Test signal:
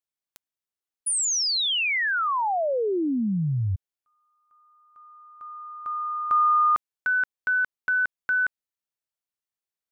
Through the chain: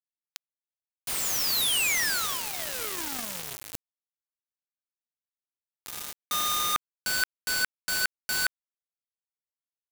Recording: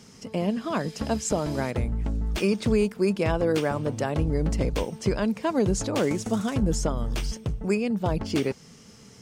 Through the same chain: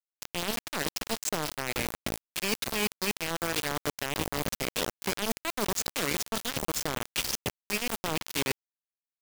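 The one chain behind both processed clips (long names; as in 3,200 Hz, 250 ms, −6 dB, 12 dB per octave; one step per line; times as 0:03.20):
meter weighting curve D
reversed playback
downward compressor 8 to 1, threshold −32 dBFS
reversed playback
noise that follows the level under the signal 19 dB
bit reduction 5 bits
level +4 dB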